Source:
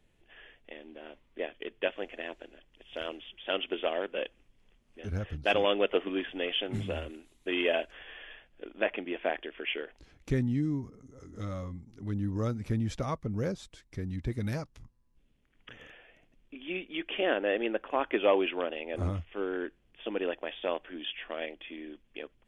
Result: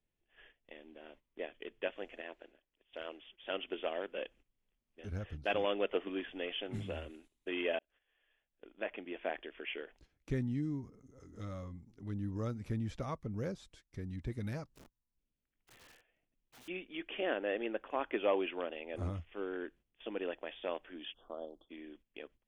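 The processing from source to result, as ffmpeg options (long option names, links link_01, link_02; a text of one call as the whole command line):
ffmpeg -i in.wav -filter_complex "[0:a]asettb=1/sr,asplit=3[link_01][link_02][link_03];[link_01]atrim=end=2.214[link_04];[link_02]atrim=start=2.21:end=3.43,asetpts=PTS-STARTPTS,afade=type=in:duration=0.004:curve=qsin,afade=type=out:start_time=1.216:duration=0.004:curve=qsin,bass=frequency=250:gain=-8,treble=frequency=4000:gain=-9[link_05];[link_03]atrim=start=3.426[link_06];[link_04][link_05]acrossfade=duration=0.004:curve1=hsin:curve2=qsin[link_07];[link_07][link_06]acrossfade=duration=0.004:curve1=qsin:curve2=hsin,asettb=1/sr,asplit=3[link_08][link_09][link_10];[link_08]atrim=end=14.724[link_11];[link_09]atrim=start=14.72:end=16.68,asetpts=PTS-STARTPTS,afade=type=in:duration=0.004:curve=qsin,afade=type=out:start_time=1.956:duration=0.004:curve=qsin,aeval=exprs='(mod(200*val(0)+1,2)-1)/200':channel_layout=same[link_12];[link_10]atrim=start=16.676[link_13];[link_11][link_12]acrossfade=duration=0.004:curve1=hsin:curve2=qsin[link_14];[link_14][link_13]acrossfade=duration=0.004:curve1=qsin:curve2=hsin,asplit=3[link_15][link_16][link_17];[link_15]afade=type=out:start_time=21.12:duration=0.02[link_18];[link_16]asuperstop=centerf=2200:order=8:qfactor=0.82,afade=type=in:start_time=21.12:duration=0.02,afade=type=out:start_time=21.69:duration=0.02[link_19];[link_17]afade=type=in:start_time=21.69:duration=0.02[link_20];[link_18][link_19][link_20]amix=inputs=3:normalize=0,asplit=2[link_21][link_22];[link_21]atrim=end=7.79,asetpts=PTS-STARTPTS,afade=type=out:start_time=7.786:duration=0.004:curve=hsin[link_23];[link_22]atrim=start=7.79,asetpts=PTS-STARTPTS,afade=type=in:duration=1.57[link_24];[link_23][link_24]concat=n=2:v=0:a=1,agate=range=-12dB:threshold=-53dB:ratio=16:detection=peak,acrossover=split=3400[link_25][link_26];[link_26]acompressor=threshold=-49dB:ratio=4:attack=1:release=60[link_27];[link_25][link_27]amix=inputs=2:normalize=0,volume=-6.5dB" out.wav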